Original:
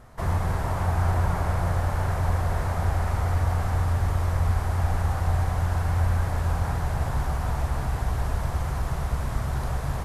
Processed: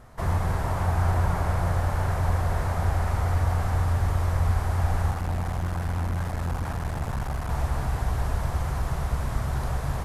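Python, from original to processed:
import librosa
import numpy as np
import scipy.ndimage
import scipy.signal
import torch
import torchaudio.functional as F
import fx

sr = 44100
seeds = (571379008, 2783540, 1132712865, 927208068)

y = fx.clip_asym(x, sr, top_db=-33.5, bottom_db=-19.0, at=(5.11, 7.51))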